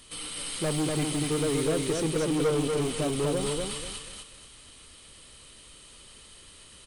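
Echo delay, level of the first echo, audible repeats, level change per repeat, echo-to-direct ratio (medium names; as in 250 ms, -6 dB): 243 ms, -3.0 dB, 3, -11.0 dB, -2.5 dB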